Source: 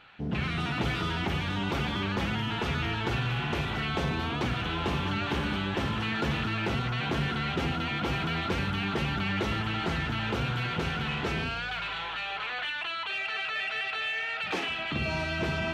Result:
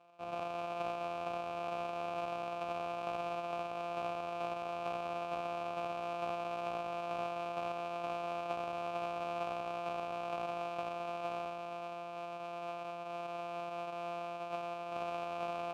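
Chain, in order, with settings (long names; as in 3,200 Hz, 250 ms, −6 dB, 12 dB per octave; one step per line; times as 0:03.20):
samples sorted by size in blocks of 256 samples
formant filter a
level +4.5 dB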